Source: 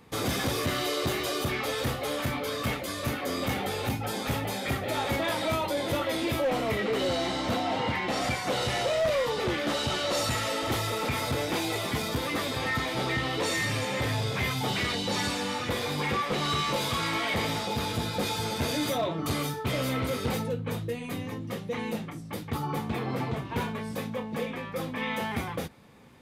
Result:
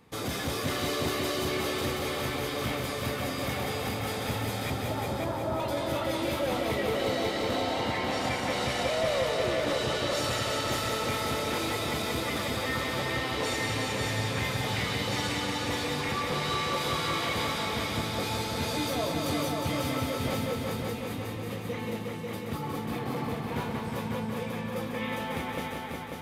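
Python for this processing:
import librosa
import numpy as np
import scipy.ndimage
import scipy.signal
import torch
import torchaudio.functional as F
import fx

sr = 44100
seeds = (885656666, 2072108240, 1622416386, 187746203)

p1 = fx.lowpass(x, sr, hz=1200.0, slope=24, at=(4.7, 5.6))
p2 = p1 + fx.echo_heads(p1, sr, ms=181, heads='all three', feedback_pct=56, wet_db=-7.0, dry=0)
y = p2 * librosa.db_to_amplitude(-4.0)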